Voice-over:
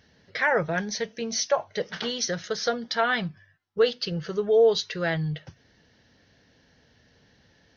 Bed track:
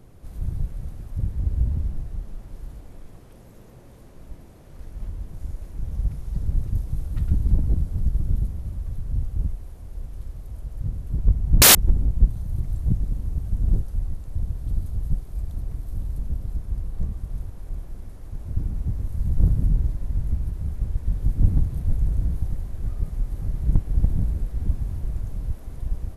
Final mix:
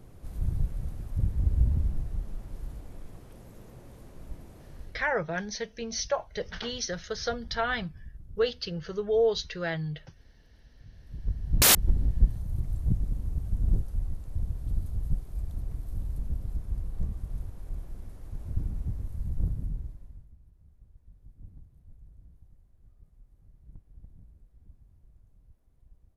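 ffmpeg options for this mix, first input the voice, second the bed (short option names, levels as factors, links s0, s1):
-filter_complex "[0:a]adelay=4600,volume=0.562[s0];[1:a]volume=7.08,afade=t=out:st=4.68:d=0.43:silence=0.0841395,afade=t=in:st=10.92:d=1.11:silence=0.11885,afade=t=out:st=18.49:d=1.8:silence=0.0530884[s1];[s0][s1]amix=inputs=2:normalize=0"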